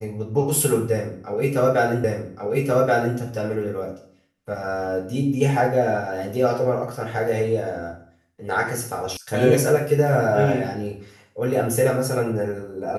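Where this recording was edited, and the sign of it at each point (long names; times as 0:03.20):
0:02.04: the same again, the last 1.13 s
0:09.17: cut off before it has died away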